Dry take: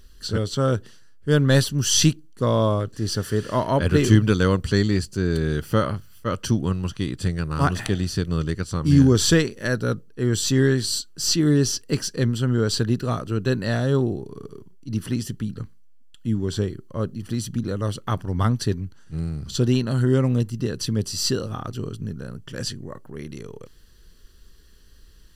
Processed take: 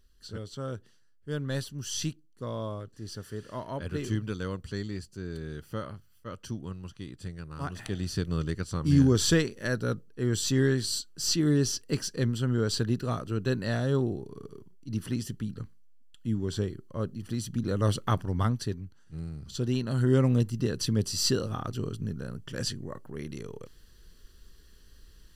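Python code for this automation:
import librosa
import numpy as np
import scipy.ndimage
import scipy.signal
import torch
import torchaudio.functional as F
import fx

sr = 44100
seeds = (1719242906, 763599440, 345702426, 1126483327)

y = fx.gain(x, sr, db=fx.line((7.69, -15.0), (8.12, -6.0), (17.51, -6.0), (17.91, 1.0), (18.76, -10.0), (19.61, -10.0), (20.2, -3.0)))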